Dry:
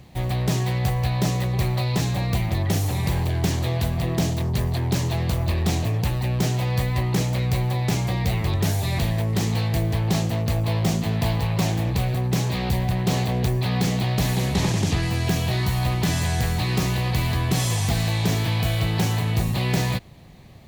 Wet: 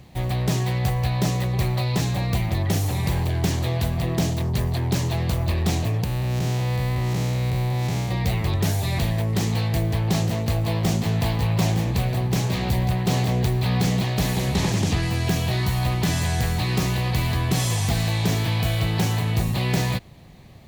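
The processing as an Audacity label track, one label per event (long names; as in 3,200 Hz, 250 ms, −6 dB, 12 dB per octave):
6.040000	8.110000	spectrum smeared in time width 206 ms
9.290000	14.950000	single-tap delay 911 ms −11 dB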